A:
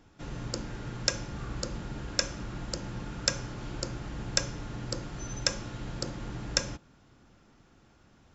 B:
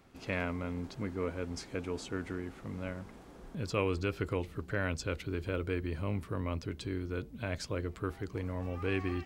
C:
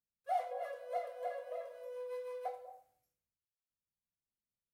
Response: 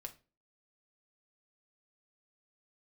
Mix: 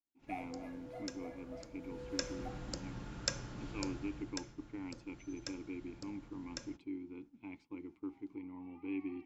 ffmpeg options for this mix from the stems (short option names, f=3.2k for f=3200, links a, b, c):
-filter_complex "[0:a]volume=-8dB,afade=t=in:st=1.78:d=0.63:silence=0.251189,afade=t=out:st=3.89:d=0.52:silence=0.298538[a];[1:a]asplit=3[b][c][d];[b]bandpass=f=300:t=q:w=8,volume=0dB[e];[c]bandpass=f=870:t=q:w=8,volume=-6dB[f];[d]bandpass=f=2.24k:t=q:w=8,volume=-9dB[g];[e][f][g]amix=inputs=3:normalize=0,volume=-1dB,asplit=2[h][i];[i]volume=-6.5dB[j];[2:a]aecho=1:1:6.4:0.93,volume=-14.5dB,asplit=2[k][l];[l]volume=-3dB[m];[3:a]atrim=start_sample=2205[n];[j][m]amix=inputs=2:normalize=0[o];[o][n]afir=irnorm=-1:irlink=0[p];[a][h][k][p]amix=inputs=4:normalize=0,agate=range=-33dB:threshold=-50dB:ratio=3:detection=peak"